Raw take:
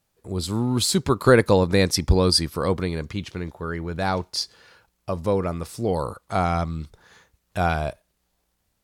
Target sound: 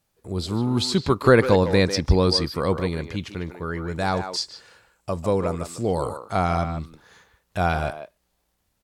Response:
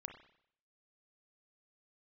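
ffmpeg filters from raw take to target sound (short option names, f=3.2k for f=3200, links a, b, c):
-filter_complex "[0:a]acrossover=split=6200[a][b];[b]acompressor=threshold=-46dB:ratio=4:attack=1:release=60[c];[a][c]amix=inputs=2:normalize=0,asettb=1/sr,asplit=3[d][e][f];[d]atrim=end=3.884[g];[e]atrim=start=3.88:end=6.2,asetpts=PTS-STARTPTS,afade=t=in:d=0.004:c=qsin,afade=t=out:st=2.316:d=0.004:c=qsin,equalizer=f=7.7k:w=3.1:g=11.5[h];[f]atrim=start=6.196[i];[g][h]acrossfade=d=0.004:c1=hsin:c2=qsin[j];[j][i]acrossfade=d=0.004:c1=qsin:c2=hsin,asplit=2[k][l];[l]adelay=150,highpass=300,lowpass=3.4k,asoftclip=type=hard:threshold=-13.5dB,volume=-8dB[m];[k][m]amix=inputs=2:normalize=0"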